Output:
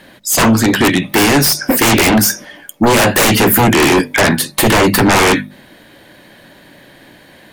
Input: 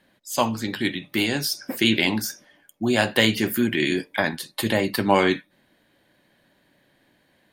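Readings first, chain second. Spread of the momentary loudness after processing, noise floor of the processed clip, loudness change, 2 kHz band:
4 LU, -43 dBFS, +12.0 dB, +11.0 dB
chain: hum notches 50/100/150/200/250 Hz; sine folder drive 20 dB, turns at -2.5 dBFS; dynamic bell 4 kHz, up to -6 dB, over -22 dBFS, Q 1.1; trim -3 dB

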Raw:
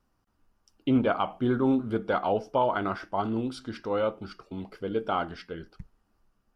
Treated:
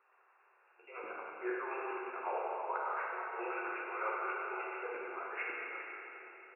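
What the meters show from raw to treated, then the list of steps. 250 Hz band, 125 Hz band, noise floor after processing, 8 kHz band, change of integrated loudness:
-21.0 dB, under -40 dB, -69 dBFS, no reading, -11.0 dB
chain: FFT band-pass 350–2800 Hz; peaking EQ 580 Hz -9.5 dB 0.46 oct; harmonic-percussive split harmonic -15 dB; treble shelf 2.2 kHz +7.5 dB; compression 8:1, threshold -44 dBFS, peak gain reduction 20 dB; slow attack 291 ms; chorus voices 2, 0.35 Hz, delay 15 ms, depth 4.2 ms; echo from a far wall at 290 m, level -16 dB; Schroeder reverb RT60 3.2 s, combs from 31 ms, DRR -4 dB; trim +15 dB

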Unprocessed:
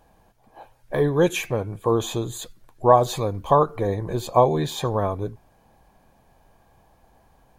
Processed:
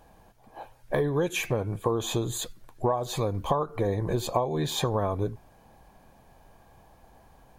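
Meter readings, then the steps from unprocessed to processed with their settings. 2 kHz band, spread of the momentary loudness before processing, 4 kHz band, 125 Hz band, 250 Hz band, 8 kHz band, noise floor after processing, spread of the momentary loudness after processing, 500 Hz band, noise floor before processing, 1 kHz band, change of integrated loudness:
-3.0 dB, 13 LU, -1.0 dB, -3.5 dB, -4.5 dB, -1.0 dB, -58 dBFS, 8 LU, -7.0 dB, -60 dBFS, -9.0 dB, -6.5 dB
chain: compression 16:1, threshold -24 dBFS, peak gain reduction 16.5 dB; trim +2 dB

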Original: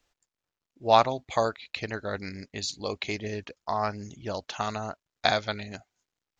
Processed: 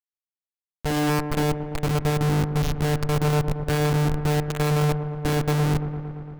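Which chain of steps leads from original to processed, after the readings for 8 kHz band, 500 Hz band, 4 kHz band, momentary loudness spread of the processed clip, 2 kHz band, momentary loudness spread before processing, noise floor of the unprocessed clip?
no reading, +3.0 dB, -0.5 dB, 5 LU, +3.0 dB, 15 LU, under -85 dBFS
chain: painted sound rise, 0.97–1.20 s, 450–1900 Hz -20 dBFS; vocoder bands 4, saw 149 Hz; Schmitt trigger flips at -34.5 dBFS; feedback echo behind a low-pass 114 ms, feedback 76%, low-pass 1.5 kHz, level -11 dB; trim +6.5 dB

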